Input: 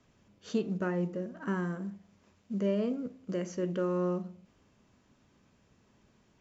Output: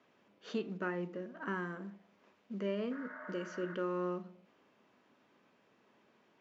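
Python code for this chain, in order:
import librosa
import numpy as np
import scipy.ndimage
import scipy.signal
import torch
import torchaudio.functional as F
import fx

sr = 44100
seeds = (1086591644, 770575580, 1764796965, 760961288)

y = fx.spec_repair(x, sr, seeds[0], start_s=2.94, length_s=0.78, low_hz=590.0, high_hz=2200.0, source='after')
y = fx.dynamic_eq(y, sr, hz=580.0, q=0.92, threshold_db=-46.0, ratio=4.0, max_db=-8)
y = fx.bandpass_edges(y, sr, low_hz=330.0, high_hz=3300.0)
y = F.gain(torch.from_numpy(y), 2.0).numpy()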